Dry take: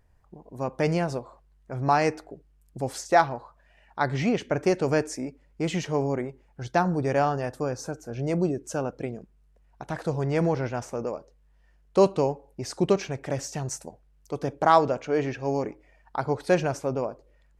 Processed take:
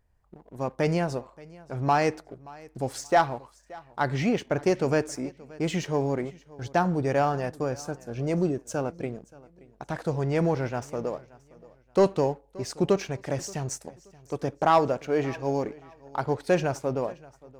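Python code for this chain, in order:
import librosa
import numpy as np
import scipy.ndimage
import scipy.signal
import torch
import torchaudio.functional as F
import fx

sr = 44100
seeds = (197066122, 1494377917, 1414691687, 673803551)

y = fx.leveller(x, sr, passes=1)
y = fx.echo_feedback(y, sr, ms=577, feedback_pct=28, wet_db=-22.0)
y = F.gain(torch.from_numpy(y), -4.0).numpy()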